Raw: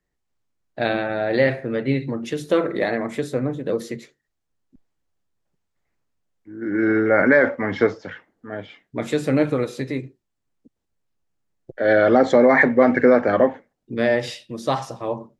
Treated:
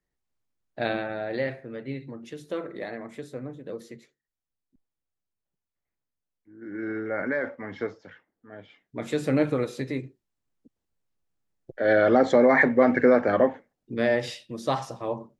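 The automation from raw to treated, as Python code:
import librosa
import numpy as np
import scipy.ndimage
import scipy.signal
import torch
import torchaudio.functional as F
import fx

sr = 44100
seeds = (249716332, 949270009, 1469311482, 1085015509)

y = fx.gain(x, sr, db=fx.line((0.91, -5.5), (1.65, -13.0), (8.53, -13.0), (9.24, -4.0)))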